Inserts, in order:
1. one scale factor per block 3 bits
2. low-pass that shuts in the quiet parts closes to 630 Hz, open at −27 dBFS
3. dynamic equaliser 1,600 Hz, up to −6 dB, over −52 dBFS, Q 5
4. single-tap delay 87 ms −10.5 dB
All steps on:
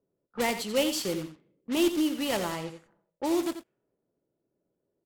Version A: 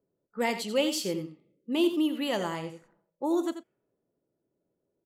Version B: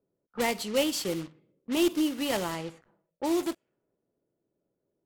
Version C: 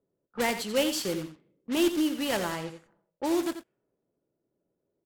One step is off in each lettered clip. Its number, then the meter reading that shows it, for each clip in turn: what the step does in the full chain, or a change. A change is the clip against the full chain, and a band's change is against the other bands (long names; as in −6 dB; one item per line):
1, distortion level −12 dB
4, change in momentary loudness spread −1 LU
3, change in momentary loudness spread −2 LU